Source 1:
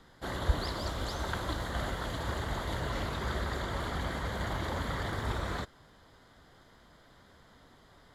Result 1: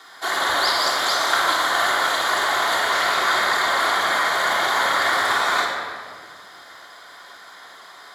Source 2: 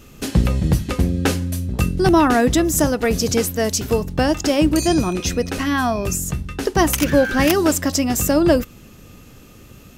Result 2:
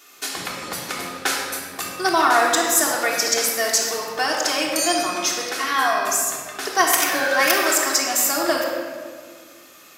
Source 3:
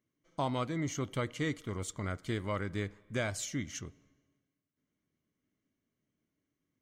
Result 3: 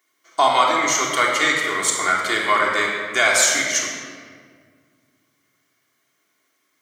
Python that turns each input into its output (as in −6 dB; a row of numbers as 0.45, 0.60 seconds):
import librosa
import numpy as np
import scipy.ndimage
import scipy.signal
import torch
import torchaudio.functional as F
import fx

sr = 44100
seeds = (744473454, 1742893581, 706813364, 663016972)

y = scipy.signal.sosfilt(scipy.signal.butter(2, 950.0, 'highpass', fs=sr, output='sos'), x)
y = fx.peak_eq(y, sr, hz=2800.0, db=-5.5, octaves=0.29)
y = fx.room_shoebox(y, sr, seeds[0], volume_m3=2700.0, walls='mixed', distance_m=3.3)
y = y * 10.0 ** (-22 / 20.0) / np.sqrt(np.mean(np.square(y)))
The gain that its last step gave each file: +16.0, +1.0, +20.0 decibels